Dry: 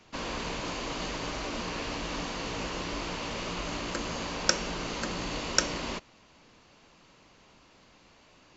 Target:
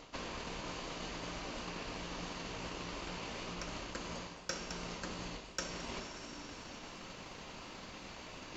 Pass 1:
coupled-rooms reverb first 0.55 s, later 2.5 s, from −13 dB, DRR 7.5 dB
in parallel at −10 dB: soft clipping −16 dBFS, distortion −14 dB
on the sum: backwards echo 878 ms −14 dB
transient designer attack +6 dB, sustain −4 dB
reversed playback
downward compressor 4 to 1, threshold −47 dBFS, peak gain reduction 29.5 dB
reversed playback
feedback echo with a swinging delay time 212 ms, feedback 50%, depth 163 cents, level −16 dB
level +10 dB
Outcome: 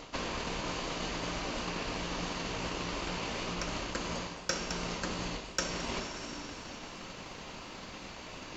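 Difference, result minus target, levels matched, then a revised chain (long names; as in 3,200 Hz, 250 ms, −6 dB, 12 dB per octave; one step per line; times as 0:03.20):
downward compressor: peak gain reduction −7 dB
coupled-rooms reverb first 0.55 s, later 2.5 s, from −13 dB, DRR 7.5 dB
in parallel at −10 dB: soft clipping −16 dBFS, distortion −14 dB
on the sum: backwards echo 878 ms −14 dB
transient designer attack +6 dB, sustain −4 dB
reversed playback
downward compressor 4 to 1, threshold −56 dBFS, peak gain reduction 36 dB
reversed playback
feedback echo with a swinging delay time 212 ms, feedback 50%, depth 163 cents, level −16 dB
level +10 dB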